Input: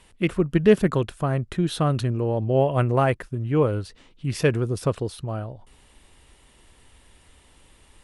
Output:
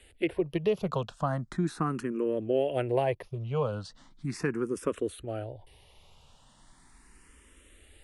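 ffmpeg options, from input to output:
-filter_complex "[0:a]acrossover=split=200|2000[a][b][c];[a]acompressor=threshold=-38dB:ratio=4[d];[b]acompressor=threshold=-21dB:ratio=4[e];[c]acompressor=threshold=-42dB:ratio=4[f];[d][e][f]amix=inputs=3:normalize=0,asplit=2[g][h];[h]afreqshift=0.38[i];[g][i]amix=inputs=2:normalize=1"

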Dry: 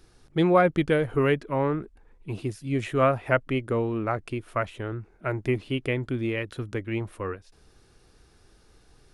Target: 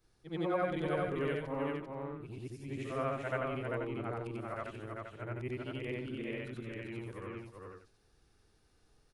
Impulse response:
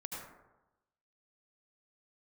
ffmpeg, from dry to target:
-af "afftfilt=real='re':imag='-im':win_size=8192:overlap=0.75,aecho=1:1:393:0.668,volume=-8.5dB"

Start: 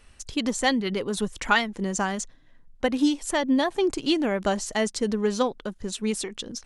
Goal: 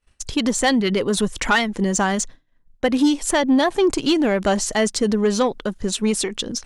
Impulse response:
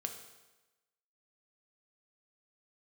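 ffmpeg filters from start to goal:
-filter_complex "[0:a]agate=range=-33dB:threshold=-39dB:ratio=3:detection=peak,asplit=2[a][b];[b]alimiter=limit=-19.5dB:level=0:latency=1:release=142,volume=0dB[c];[a][c]amix=inputs=2:normalize=0,asoftclip=type=tanh:threshold=-12dB,volume=3dB"

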